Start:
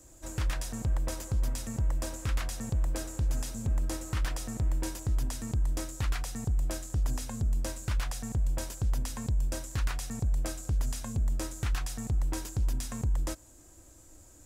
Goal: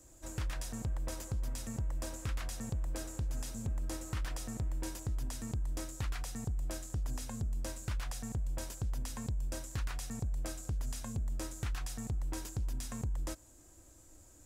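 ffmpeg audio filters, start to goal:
-af "acompressor=threshold=-28dB:ratio=6,volume=-4dB"

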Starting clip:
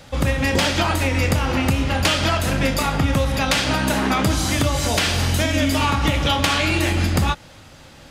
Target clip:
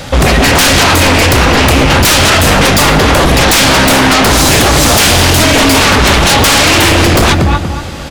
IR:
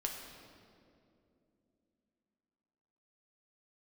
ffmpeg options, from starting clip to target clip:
-filter_complex "[0:a]asplit=2[a][b];[b]adelay=237,lowpass=f=1.9k:p=1,volume=-7dB,asplit=2[c][d];[d]adelay=237,lowpass=f=1.9k:p=1,volume=0.31,asplit=2[e][f];[f]adelay=237,lowpass=f=1.9k:p=1,volume=0.31,asplit=2[g][h];[h]adelay=237,lowpass=f=1.9k:p=1,volume=0.31[i];[a][c][e][g][i]amix=inputs=5:normalize=0,aeval=exprs='0.75*sin(PI/2*7.08*val(0)/0.75)':c=same,asplit=2[j][k];[1:a]atrim=start_sample=2205,adelay=111[l];[k][l]afir=irnorm=-1:irlink=0,volume=-18.5dB[m];[j][m]amix=inputs=2:normalize=0,volume=-1.5dB"

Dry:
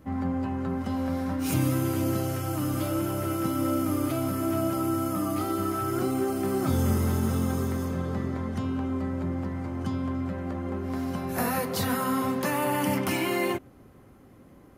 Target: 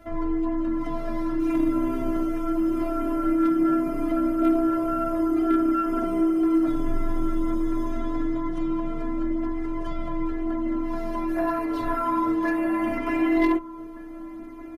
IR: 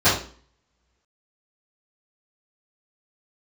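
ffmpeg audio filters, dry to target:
-filter_complex "[0:a]acrossover=split=2600[a][b];[b]acompressor=threshold=-50dB:ratio=4:attack=1:release=60[c];[a][c]amix=inputs=2:normalize=0,highshelf=f=3.7k:g=-9,bandreject=f=7.7k:w=23,afftfilt=real='hypot(re,im)*cos(PI*b)':imag='0':win_size=512:overlap=0.75,flanger=delay=1.3:depth=7.4:regen=-6:speed=0.2:shape=triangular,aeval=exprs='0.112*(cos(1*acos(clip(val(0)/0.112,-1,1)))-cos(1*PI/2))+0.01*(cos(4*acos(clip(val(0)/0.112,-1,1)))-cos(4*PI/2))':c=same,asplit=2[d][e];[e]acompressor=threshold=-44dB:ratio=10,volume=3dB[f];[d][f]amix=inputs=2:normalize=0,afreqshift=-20,asplit=2[g][h];[h]adelay=1516,volume=-16dB,highshelf=f=4k:g=-34.1[i];[g][i]amix=inputs=2:normalize=0,volume=8.5dB"

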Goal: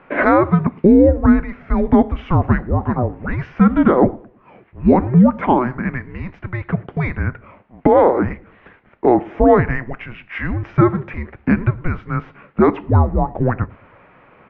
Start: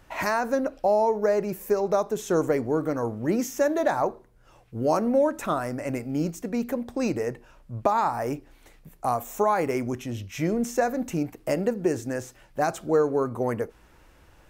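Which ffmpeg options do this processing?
-filter_complex "[0:a]asplit=2[a][b];[b]adelay=108,lowpass=f=1.2k:p=1,volume=-21.5dB,asplit=2[c][d];[d]adelay=108,lowpass=f=1.2k:p=1,volume=0.41,asplit=2[e][f];[f]adelay=108,lowpass=f=1.2k:p=1,volume=0.41[g];[c][e][g]amix=inputs=3:normalize=0[h];[a][h]amix=inputs=2:normalize=0,highpass=f=510:t=q:w=0.5412,highpass=f=510:t=q:w=1.307,lowpass=f=2.9k:t=q:w=0.5176,lowpass=f=2.9k:t=q:w=0.7071,lowpass=f=2.9k:t=q:w=1.932,afreqshift=-370,alimiter=level_in=14.5dB:limit=-1dB:release=50:level=0:latency=1,volume=-1dB"

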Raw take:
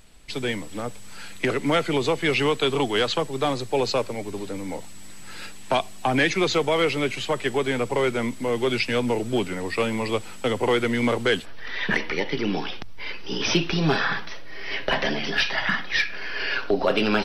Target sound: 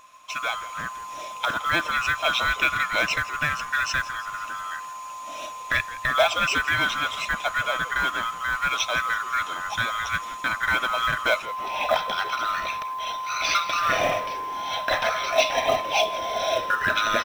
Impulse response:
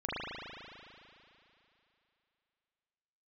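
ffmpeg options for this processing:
-filter_complex "[0:a]afftfilt=real='real(if(lt(b,960),b+48*(1-2*mod(floor(b/48),2)),b),0)':imag='imag(if(lt(b,960),b+48*(1-2*mod(floor(b/48),2)),b),0)':win_size=2048:overlap=0.75,equalizer=f=400:t=o:w=0.33:g=-8,equalizer=f=630:t=o:w=0.33:g=12,equalizer=f=2.5k:t=o:w=0.33:g=11,equalizer=f=6.3k:t=o:w=0.33:g=4,asplit=6[a][b][c][d][e][f];[b]adelay=167,afreqshift=-110,volume=-16.5dB[g];[c]adelay=334,afreqshift=-220,volume=-21.4dB[h];[d]adelay=501,afreqshift=-330,volume=-26.3dB[i];[e]adelay=668,afreqshift=-440,volume=-31.1dB[j];[f]adelay=835,afreqshift=-550,volume=-36dB[k];[a][g][h][i][j][k]amix=inputs=6:normalize=0,acrusher=bits=6:mode=log:mix=0:aa=0.000001,volume=-3.5dB"

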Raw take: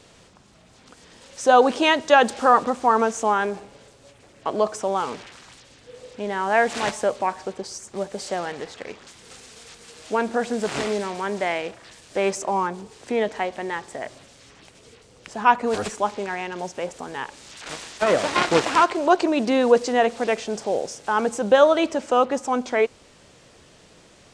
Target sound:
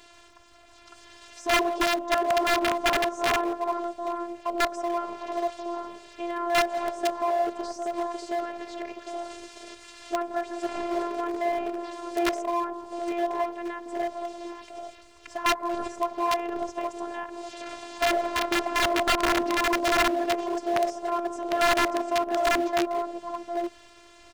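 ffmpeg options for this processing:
-filter_complex "[0:a]lowshelf=f=160:t=q:w=3:g=6,acrossover=split=970[a][b];[a]aecho=1:1:170|336|754|824:0.237|0.106|0.398|0.531[c];[b]acompressor=threshold=-42dB:ratio=6[d];[c][d]amix=inputs=2:normalize=0,afftfilt=real='hypot(re,im)*cos(PI*b)':imag='0':win_size=512:overlap=0.75,asplit=2[e][f];[f]acrusher=bits=6:dc=4:mix=0:aa=0.000001,volume=-11dB[g];[e][g]amix=inputs=2:normalize=0,aeval=exprs='(mod(5.31*val(0)+1,2)-1)/5.31':c=same,asplit=2[h][i];[i]highpass=f=720:p=1,volume=7dB,asoftclip=type=tanh:threshold=-14.5dB[j];[h][j]amix=inputs=2:normalize=0,lowpass=f=3.8k:p=1,volume=-6dB"

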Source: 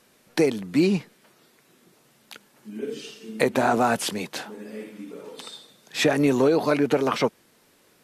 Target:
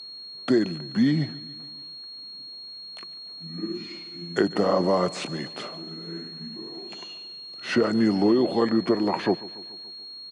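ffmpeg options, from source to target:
-filter_complex "[0:a]highpass=210,highshelf=f=2.7k:g=-10,asplit=2[a][b];[b]aecho=0:1:112|224|336|448|560:0.106|0.0625|0.0369|0.0218|0.0128[c];[a][c]amix=inputs=2:normalize=0,aeval=exprs='val(0)+0.0126*sin(2*PI*5500*n/s)':c=same,asetrate=34354,aresample=44100"

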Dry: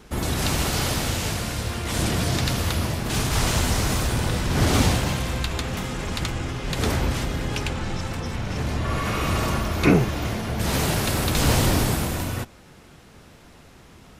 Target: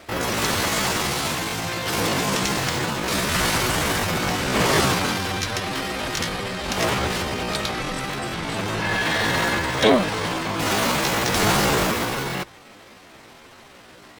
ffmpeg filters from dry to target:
-filter_complex "[0:a]asetrate=66075,aresample=44100,atempo=0.66742,asplit=2[a][b];[b]highpass=f=720:p=1,volume=12dB,asoftclip=type=tanh:threshold=-5dB[c];[a][c]amix=inputs=2:normalize=0,lowpass=f=4.2k:p=1,volume=-6dB,bandreject=f=60:t=h:w=6,bandreject=f=120:t=h:w=6"

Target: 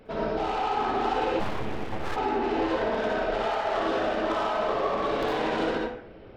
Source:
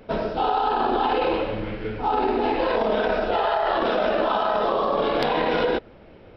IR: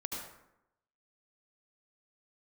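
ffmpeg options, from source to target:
-filter_complex "[0:a]asoftclip=type=tanh:threshold=-23dB[a];[1:a]atrim=start_sample=2205,asetrate=57330,aresample=44100[b];[a][b]afir=irnorm=-1:irlink=0,asplit=3[c][d][e];[c]afade=t=out:st=1.39:d=0.02[f];[d]aeval=exprs='abs(val(0))':c=same,afade=t=in:st=1.39:d=0.02,afade=t=out:st=2.15:d=0.02[g];[e]afade=t=in:st=2.15:d=0.02[h];[f][g][h]amix=inputs=3:normalize=0"

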